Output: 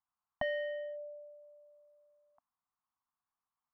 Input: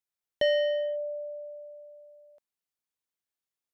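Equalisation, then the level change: elliptic band-stop 270–710 Hz, stop band 40 dB; dynamic bell 590 Hz, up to +5 dB, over -57 dBFS; resonant low-pass 1.1 kHz, resonance Q 4.8; +1.0 dB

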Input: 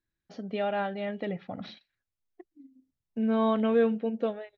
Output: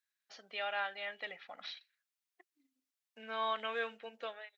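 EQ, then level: high-pass 1.4 kHz 12 dB/octave; +2.5 dB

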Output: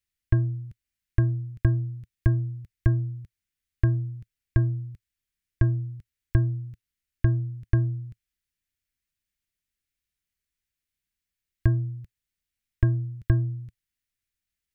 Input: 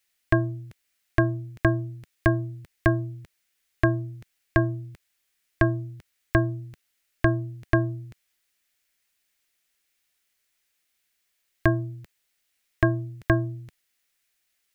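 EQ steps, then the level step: FFT filter 110 Hz 0 dB, 750 Hz -24 dB, 1.5 kHz -18 dB; +4.5 dB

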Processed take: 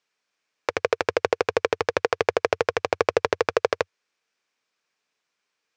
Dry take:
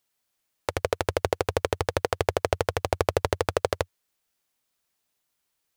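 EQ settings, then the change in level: cabinet simulation 170–6700 Hz, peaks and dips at 460 Hz +6 dB, 1.1 kHz +4 dB, 2.4 kHz +7 dB, 5.4 kHz +3 dB; peaking EQ 1.6 kHz +5.5 dB 0.49 oct; 0.0 dB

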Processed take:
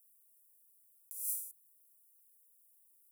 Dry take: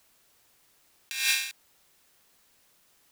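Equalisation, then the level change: steep high-pass 480 Hz 36 dB/octave; inverse Chebyshev band-stop 1.1–3.5 kHz, stop band 70 dB; 0.0 dB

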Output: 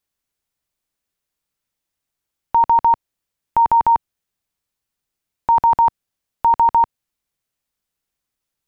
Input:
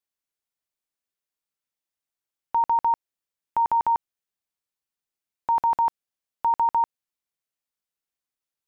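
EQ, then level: bass shelf 170 Hz +10 dB; +7.5 dB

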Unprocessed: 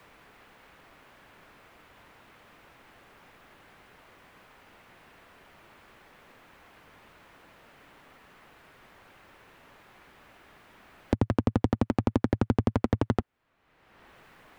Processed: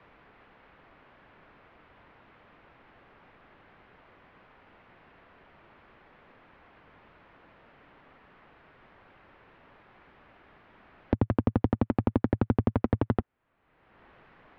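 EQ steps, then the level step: Bessel low-pass 4.7 kHz; distance through air 250 m; 0.0 dB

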